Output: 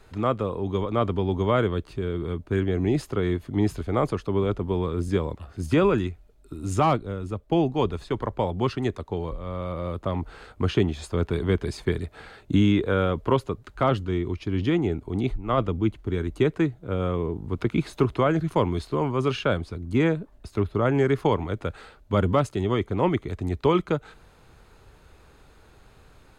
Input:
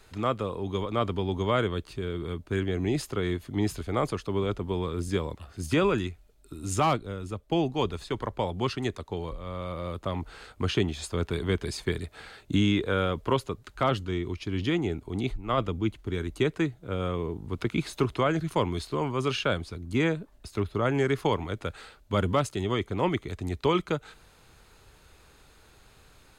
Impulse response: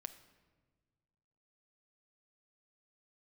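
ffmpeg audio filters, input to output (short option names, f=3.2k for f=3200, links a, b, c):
-af "highshelf=f=2.1k:g=-9.5,volume=4.5dB"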